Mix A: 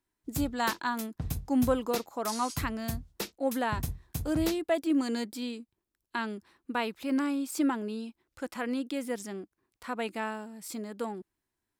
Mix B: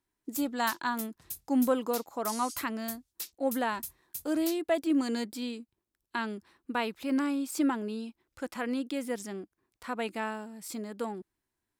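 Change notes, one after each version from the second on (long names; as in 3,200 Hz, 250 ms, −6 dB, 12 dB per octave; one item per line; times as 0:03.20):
background: add first-order pre-emphasis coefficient 0.97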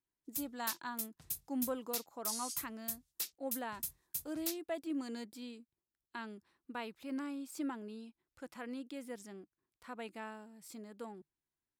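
speech −11.5 dB
master: add parametric band 150 Hz +6.5 dB 0.23 octaves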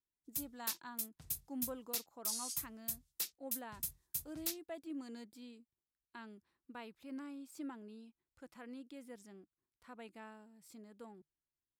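speech −7.5 dB
master: add low-shelf EQ 150 Hz +6.5 dB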